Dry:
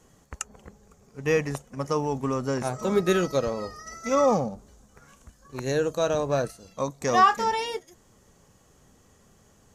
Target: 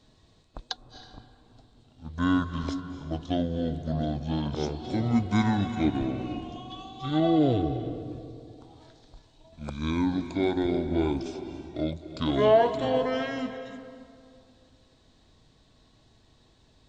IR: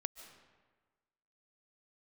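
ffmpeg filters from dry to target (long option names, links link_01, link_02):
-filter_complex "[1:a]atrim=start_sample=2205[link_01];[0:a][link_01]afir=irnorm=-1:irlink=0,asetrate=25442,aresample=44100"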